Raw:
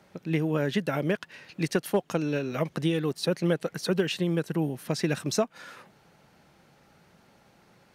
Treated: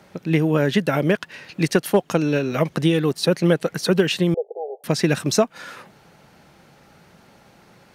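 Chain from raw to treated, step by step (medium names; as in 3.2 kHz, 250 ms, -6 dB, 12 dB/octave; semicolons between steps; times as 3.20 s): 4.34–4.84 s: Chebyshev band-pass 400–820 Hz, order 5; trim +8 dB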